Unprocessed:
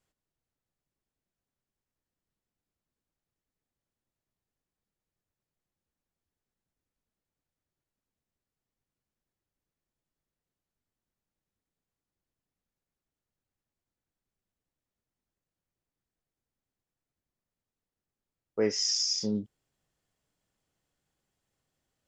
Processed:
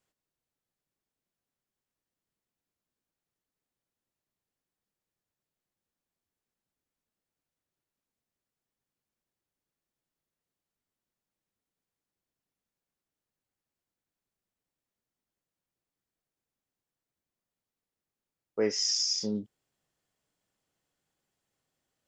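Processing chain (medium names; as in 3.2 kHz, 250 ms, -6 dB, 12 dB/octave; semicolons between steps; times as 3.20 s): bass shelf 100 Hz -10.5 dB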